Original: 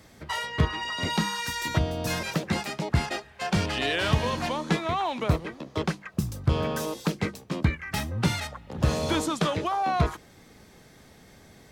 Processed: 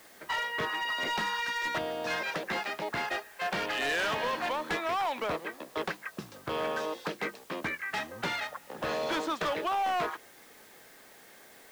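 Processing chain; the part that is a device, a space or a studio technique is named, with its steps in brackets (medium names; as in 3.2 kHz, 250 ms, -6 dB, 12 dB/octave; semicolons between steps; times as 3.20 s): drive-through speaker (band-pass 430–3400 Hz; peaking EQ 1.7 kHz +4 dB 0.36 oct; hard clipper -26.5 dBFS, distortion -12 dB; white noise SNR 24 dB)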